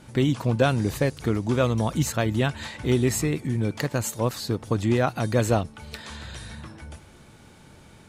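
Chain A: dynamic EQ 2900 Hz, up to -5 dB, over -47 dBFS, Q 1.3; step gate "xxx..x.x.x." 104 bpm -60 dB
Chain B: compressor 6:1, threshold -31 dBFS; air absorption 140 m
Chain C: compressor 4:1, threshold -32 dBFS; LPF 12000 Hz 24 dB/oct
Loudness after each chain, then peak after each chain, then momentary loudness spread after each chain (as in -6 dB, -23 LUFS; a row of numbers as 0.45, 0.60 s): -27.0, -36.5, -35.5 LUFS; -9.5, -19.5, -16.5 dBFS; 17, 11, 11 LU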